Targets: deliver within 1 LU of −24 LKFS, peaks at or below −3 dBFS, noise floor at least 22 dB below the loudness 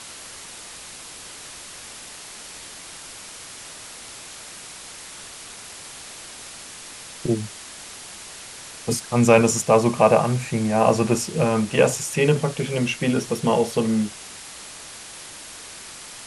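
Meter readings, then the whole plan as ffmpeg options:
background noise floor −40 dBFS; target noise floor −43 dBFS; integrated loudness −20.5 LKFS; sample peak −2.0 dBFS; target loudness −24.0 LKFS
→ -af "afftdn=noise_reduction=6:noise_floor=-40"
-af "volume=-3.5dB"

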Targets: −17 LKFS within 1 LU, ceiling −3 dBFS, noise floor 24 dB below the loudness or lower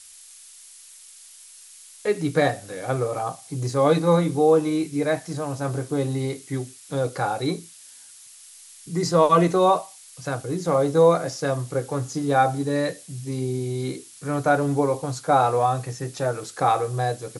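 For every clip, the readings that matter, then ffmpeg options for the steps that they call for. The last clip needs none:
background noise floor −47 dBFS; target noise floor −48 dBFS; integrated loudness −23.5 LKFS; sample peak −6.0 dBFS; target loudness −17.0 LKFS
→ -af "afftdn=noise_reduction=6:noise_floor=-47"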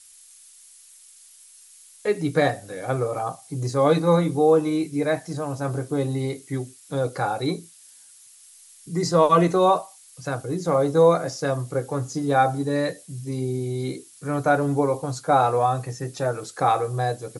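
background noise floor −50 dBFS; integrated loudness −23.5 LKFS; sample peak −6.0 dBFS; target loudness −17.0 LKFS
→ -af "volume=6.5dB,alimiter=limit=-3dB:level=0:latency=1"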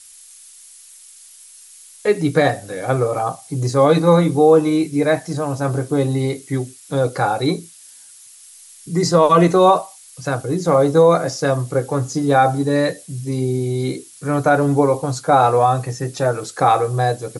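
integrated loudness −17.5 LKFS; sample peak −3.0 dBFS; background noise floor −44 dBFS

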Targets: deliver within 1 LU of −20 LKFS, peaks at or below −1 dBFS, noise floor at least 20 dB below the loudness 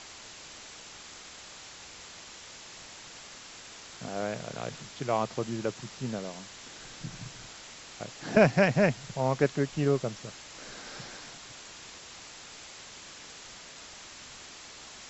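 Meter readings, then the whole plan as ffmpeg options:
background noise floor −48 dBFS; target noise floor −51 dBFS; integrated loudness −30.5 LKFS; sample peak −7.5 dBFS; target loudness −20.0 LKFS
→ -af "afftdn=noise_reduction=6:noise_floor=-48"
-af "volume=10.5dB,alimiter=limit=-1dB:level=0:latency=1"

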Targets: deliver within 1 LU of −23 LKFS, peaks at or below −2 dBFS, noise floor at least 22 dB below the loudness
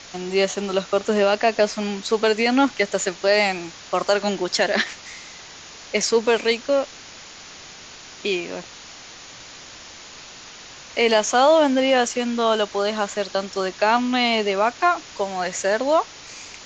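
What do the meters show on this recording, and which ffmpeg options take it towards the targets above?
background noise floor −42 dBFS; target noise floor −43 dBFS; integrated loudness −21.0 LKFS; sample peak −4.0 dBFS; target loudness −23.0 LKFS
→ -af "afftdn=noise_reduction=6:noise_floor=-42"
-af "volume=-2dB"

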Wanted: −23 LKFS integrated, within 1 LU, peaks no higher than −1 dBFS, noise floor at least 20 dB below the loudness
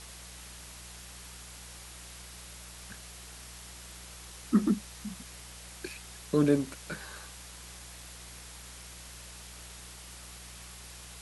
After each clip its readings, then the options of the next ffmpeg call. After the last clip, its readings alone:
mains hum 60 Hz; hum harmonics up to 180 Hz; level of the hum −49 dBFS; background noise floor −48 dBFS; target noise floor −58 dBFS; integrated loudness −37.5 LKFS; sample peak −12.5 dBFS; target loudness −23.0 LKFS
→ -af "bandreject=frequency=60:width_type=h:width=4,bandreject=frequency=120:width_type=h:width=4,bandreject=frequency=180:width_type=h:width=4"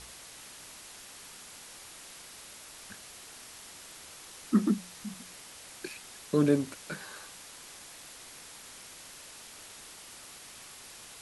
mains hum none found; background noise floor −49 dBFS; target noise floor −58 dBFS
→ -af "afftdn=noise_reduction=9:noise_floor=-49"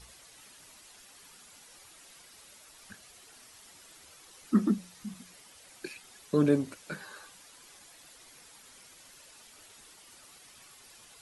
background noise floor −56 dBFS; integrated loudness −31.5 LKFS; sample peak −12.5 dBFS; target loudness −23.0 LKFS
→ -af "volume=8.5dB"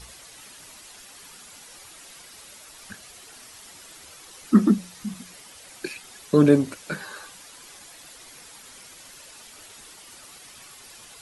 integrated loudness −23.0 LKFS; sample peak −4.0 dBFS; background noise floor −47 dBFS

